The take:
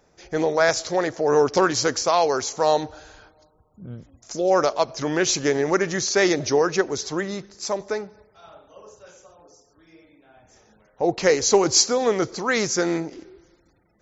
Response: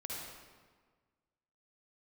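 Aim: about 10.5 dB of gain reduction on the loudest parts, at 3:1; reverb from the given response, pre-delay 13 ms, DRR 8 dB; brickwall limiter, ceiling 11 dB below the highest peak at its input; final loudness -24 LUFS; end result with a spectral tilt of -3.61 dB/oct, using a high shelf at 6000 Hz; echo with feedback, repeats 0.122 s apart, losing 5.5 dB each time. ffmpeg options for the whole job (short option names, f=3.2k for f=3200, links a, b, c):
-filter_complex "[0:a]highshelf=f=6k:g=-6,acompressor=threshold=-27dB:ratio=3,alimiter=level_in=1.5dB:limit=-24dB:level=0:latency=1,volume=-1.5dB,aecho=1:1:122|244|366|488|610|732|854:0.531|0.281|0.149|0.079|0.0419|0.0222|0.0118,asplit=2[a][b];[1:a]atrim=start_sample=2205,adelay=13[c];[b][c]afir=irnorm=-1:irlink=0,volume=-8dB[d];[a][d]amix=inputs=2:normalize=0,volume=9dB"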